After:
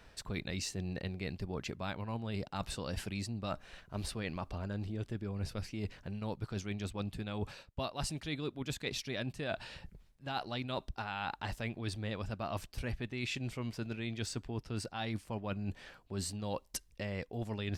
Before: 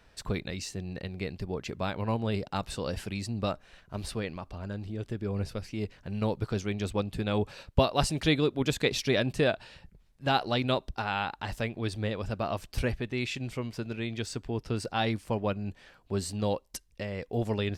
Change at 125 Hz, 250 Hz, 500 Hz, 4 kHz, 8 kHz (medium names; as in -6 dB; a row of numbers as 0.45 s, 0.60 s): -6.5 dB, -7.5 dB, -11.0 dB, -7.5 dB, -3.5 dB